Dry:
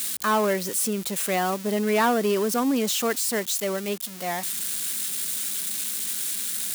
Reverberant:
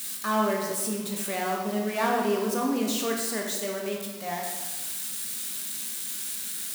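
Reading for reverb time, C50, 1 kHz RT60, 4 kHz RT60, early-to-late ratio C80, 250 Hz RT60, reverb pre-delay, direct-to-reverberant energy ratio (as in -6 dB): 1.3 s, 2.0 dB, 1.3 s, 0.90 s, 4.5 dB, 1.4 s, 15 ms, -1.0 dB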